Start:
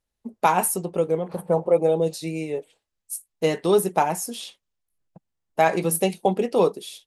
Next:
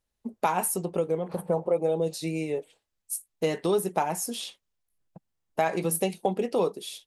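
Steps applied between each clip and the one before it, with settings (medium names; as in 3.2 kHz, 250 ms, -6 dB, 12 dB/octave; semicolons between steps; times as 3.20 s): compression 2:1, threshold -26 dBFS, peak gain reduction 7.5 dB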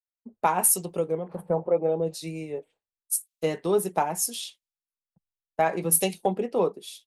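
three bands expanded up and down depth 100%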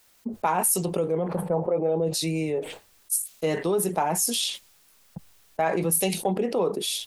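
level flattener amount 70%; trim -4 dB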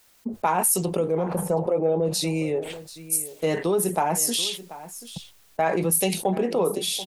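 delay 735 ms -16.5 dB; trim +1.5 dB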